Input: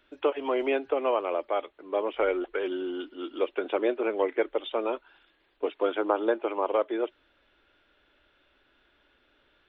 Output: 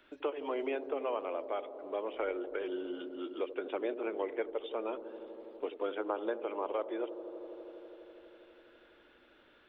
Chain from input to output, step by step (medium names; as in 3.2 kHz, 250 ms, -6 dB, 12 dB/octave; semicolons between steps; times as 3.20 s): feedback echo behind a low-pass 82 ms, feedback 84%, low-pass 580 Hz, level -11 dB; three bands compressed up and down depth 40%; trim -9 dB